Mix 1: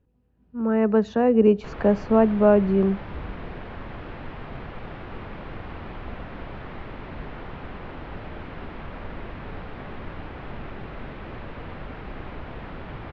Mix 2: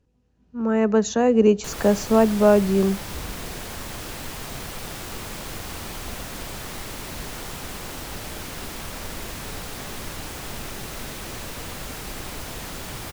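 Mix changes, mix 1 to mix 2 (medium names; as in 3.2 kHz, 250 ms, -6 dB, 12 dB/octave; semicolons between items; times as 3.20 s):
background: remove low-pass 2.8 kHz 12 dB/octave; master: remove distance through air 370 m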